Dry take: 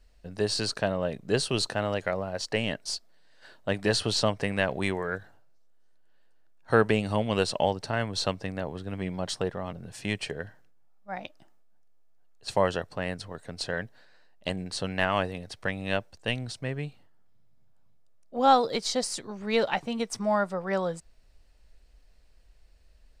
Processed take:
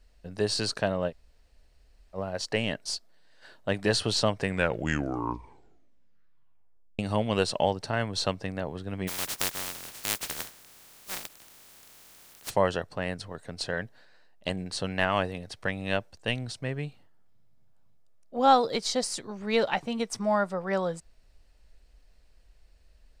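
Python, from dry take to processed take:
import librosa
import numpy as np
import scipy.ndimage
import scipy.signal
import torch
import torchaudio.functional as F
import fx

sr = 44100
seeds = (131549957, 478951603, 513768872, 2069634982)

y = fx.spec_flatten(x, sr, power=0.1, at=(9.07, 12.49), fade=0.02)
y = fx.edit(y, sr, fx.room_tone_fill(start_s=1.1, length_s=1.06, crossfade_s=0.06),
    fx.tape_stop(start_s=4.37, length_s=2.62), tone=tone)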